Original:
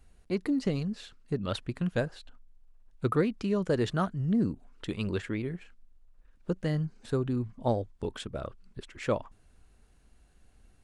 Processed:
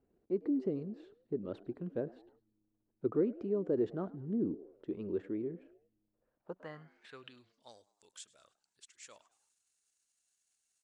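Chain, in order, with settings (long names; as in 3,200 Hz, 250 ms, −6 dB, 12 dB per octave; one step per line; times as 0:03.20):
transient designer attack −1 dB, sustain +4 dB
echo with shifted repeats 103 ms, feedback 46%, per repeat +100 Hz, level −21.5 dB
band-pass filter sweep 360 Hz → 7,100 Hz, 0:06.03–0:07.80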